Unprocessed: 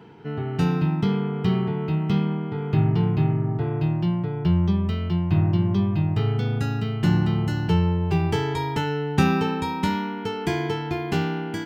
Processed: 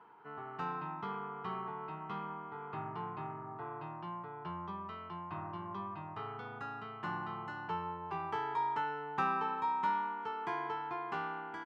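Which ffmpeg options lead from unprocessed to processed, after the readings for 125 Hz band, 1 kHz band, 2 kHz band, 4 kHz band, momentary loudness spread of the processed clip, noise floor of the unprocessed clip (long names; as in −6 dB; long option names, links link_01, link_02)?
−28.5 dB, −4.0 dB, −10.0 dB, −19.0 dB, 10 LU, −30 dBFS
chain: -filter_complex "[0:a]bandpass=frequency=1100:width_type=q:width=4.1:csg=0,asplit=2[link_01][link_02];[link_02]adelay=390,highpass=300,lowpass=3400,asoftclip=type=hard:threshold=-31.5dB,volume=-29dB[link_03];[link_01][link_03]amix=inputs=2:normalize=0,volume=1.5dB"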